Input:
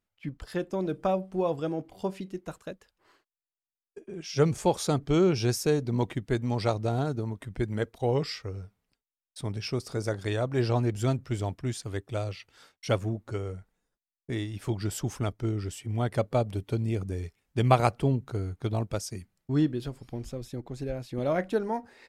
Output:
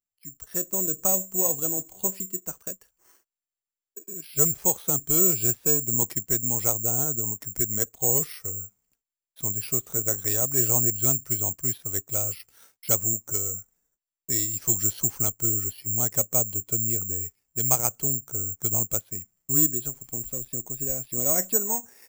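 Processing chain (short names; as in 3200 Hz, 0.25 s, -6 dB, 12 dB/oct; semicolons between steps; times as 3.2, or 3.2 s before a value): AGC gain up to 13 dB; careless resampling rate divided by 6×, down filtered, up zero stuff; 12.98–15.07 dynamic EQ 5400 Hz, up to +7 dB, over -27 dBFS, Q 1.3; gain -16 dB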